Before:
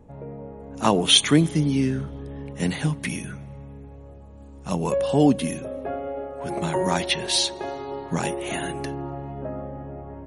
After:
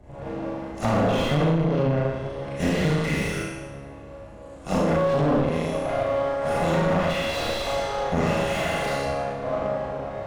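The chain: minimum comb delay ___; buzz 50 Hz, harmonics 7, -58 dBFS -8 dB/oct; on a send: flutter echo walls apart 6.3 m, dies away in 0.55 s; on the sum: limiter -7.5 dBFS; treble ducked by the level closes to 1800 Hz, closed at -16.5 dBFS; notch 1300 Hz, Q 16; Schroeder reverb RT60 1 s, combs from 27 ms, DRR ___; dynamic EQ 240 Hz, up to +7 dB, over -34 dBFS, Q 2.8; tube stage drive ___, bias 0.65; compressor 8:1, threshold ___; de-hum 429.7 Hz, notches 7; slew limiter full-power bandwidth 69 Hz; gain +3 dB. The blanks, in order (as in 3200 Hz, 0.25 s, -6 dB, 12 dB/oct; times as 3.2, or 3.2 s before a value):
1.5 ms, -7.5 dB, 11 dB, -21 dBFS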